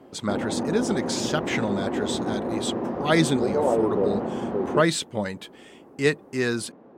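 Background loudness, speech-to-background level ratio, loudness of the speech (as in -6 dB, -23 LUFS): -27.5 LUFS, 0.5 dB, -27.0 LUFS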